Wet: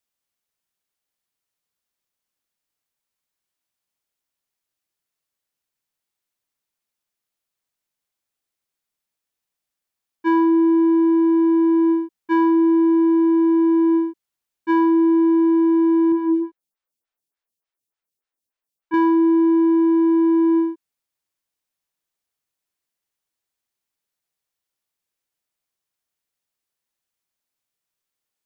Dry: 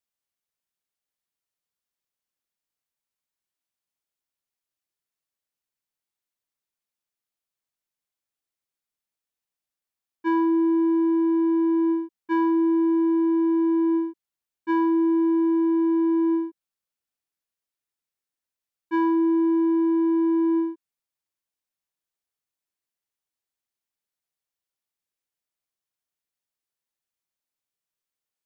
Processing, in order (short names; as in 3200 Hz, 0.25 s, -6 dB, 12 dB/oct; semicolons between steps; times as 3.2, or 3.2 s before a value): 16.12–18.94 photocell phaser 3.4 Hz; gain +5 dB